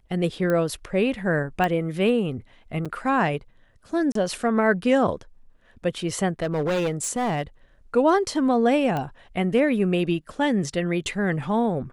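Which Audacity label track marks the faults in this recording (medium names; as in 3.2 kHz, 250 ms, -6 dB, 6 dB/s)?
0.500000	0.500000	pop -14 dBFS
1.640000	1.640000	pop -13 dBFS
2.850000	2.860000	dropout 6.1 ms
4.120000	4.150000	dropout 33 ms
6.420000	7.420000	clipped -20.5 dBFS
8.970000	8.970000	pop -16 dBFS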